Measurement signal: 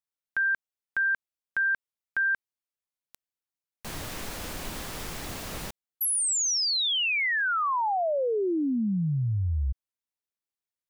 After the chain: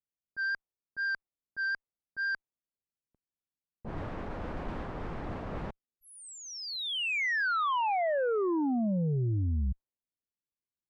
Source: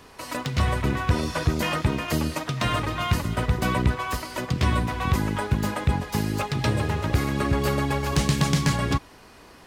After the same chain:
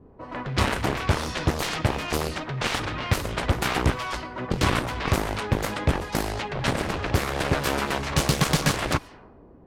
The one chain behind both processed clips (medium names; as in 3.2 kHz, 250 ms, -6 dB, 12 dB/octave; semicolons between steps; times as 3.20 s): vibrato 4.1 Hz 14 cents; Chebyshev shaper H 2 -33 dB, 3 -18 dB, 7 -11 dB, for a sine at -10.5 dBFS; level-controlled noise filter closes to 320 Hz, open at -22 dBFS